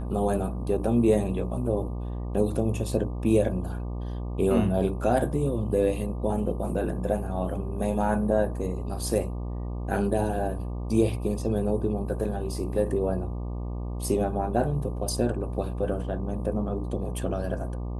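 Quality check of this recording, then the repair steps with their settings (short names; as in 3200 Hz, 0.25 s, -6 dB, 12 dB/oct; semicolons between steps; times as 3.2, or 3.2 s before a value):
buzz 60 Hz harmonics 20 -32 dBFS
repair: de-hum 60 Hz, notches 20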